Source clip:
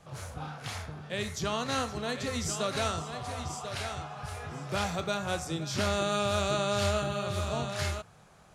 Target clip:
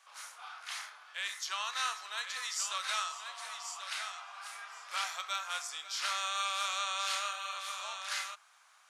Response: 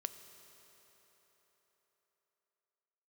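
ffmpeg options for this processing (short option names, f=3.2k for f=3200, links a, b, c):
-af "highpass=f=1.1k:w=0.5412,highpass=f=1.1k:w=1.3066,asetrate=42336,aresample=44100"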